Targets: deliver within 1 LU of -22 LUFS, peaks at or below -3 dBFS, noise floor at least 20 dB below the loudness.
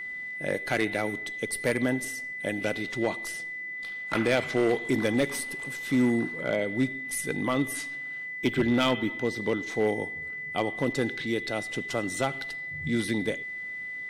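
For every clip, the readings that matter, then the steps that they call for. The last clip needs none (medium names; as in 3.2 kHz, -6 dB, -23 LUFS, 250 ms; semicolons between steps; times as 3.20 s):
clipped samples 0.6%; clipping level -17.5 dBFS; steady tone 2 kHz; tone level -34 dBFS; loudness -29.0 LUFS; peak level -17.5 dBFS; loudness target -22.0 LUFS
-> clip repair -17.5 dBFS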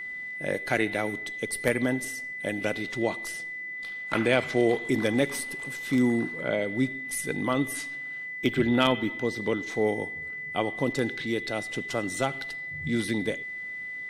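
clipped samples 0.0%; steady tone 2 kHz; tone level -34 dBFS
-> band-stop 2 kHz, Q 30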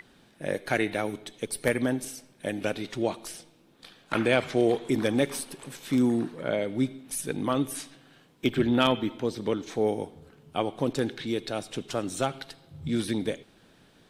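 steady tone not found; loudness -29.0 LUFS; peak level -8.5 dBFS; loudness target -22.0 LUFS
-> trim +7 dB; peak limiter -3 dBFS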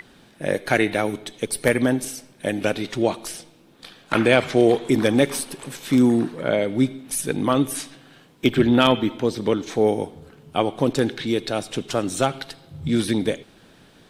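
loudness -22.0 LUFS; peak level -3.0 dBFS; noise floor -53 dBFS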